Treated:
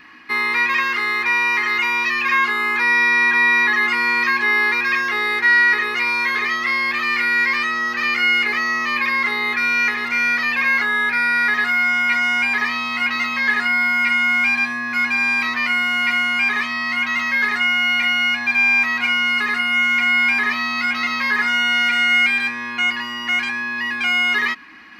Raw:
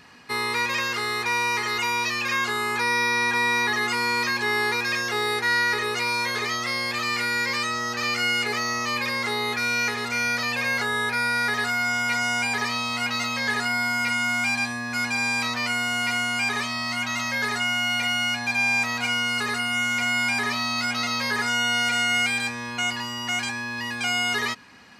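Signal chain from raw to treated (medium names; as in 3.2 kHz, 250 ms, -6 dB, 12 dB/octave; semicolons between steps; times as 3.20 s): graphic EQ 125/250/500/2000/8000 Hz -11/+4/-7/+11/-12 dB; reverse; upward compressor, threshold -39 dBFS; reverse; small resonant body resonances 320/1100 Hz, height 14 dB, ringing for 95 ms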